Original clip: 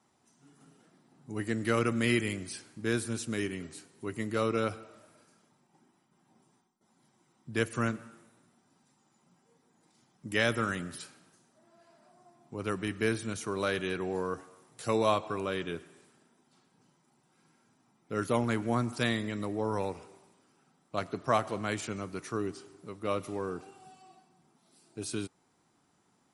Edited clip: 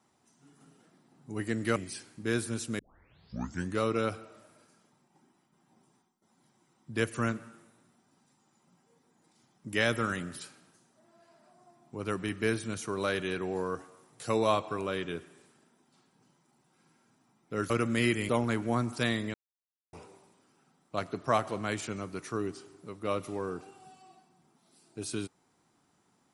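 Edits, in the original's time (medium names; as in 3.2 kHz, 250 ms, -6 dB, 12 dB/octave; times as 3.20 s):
1.76–2.35 s: move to 18.29 s
3.38 s: tape start 1.01 s
19.34–19.93 s: mute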